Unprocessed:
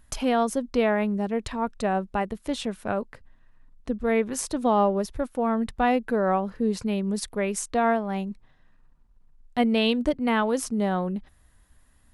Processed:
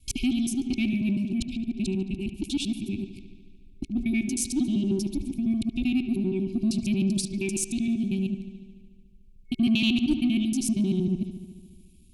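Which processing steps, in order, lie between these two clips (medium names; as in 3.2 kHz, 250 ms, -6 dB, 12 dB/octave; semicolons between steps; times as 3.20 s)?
time reversed locally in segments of 78 ms; FFT band-reject 390–2200 Hz; in parallel at -7.5 dB: saturation -26.5 dBFS, distortion -13 dB; on the sum: feedback echo behind a low-pass 73 ms, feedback 73%, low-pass 3.8 kHz, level -12.5 dB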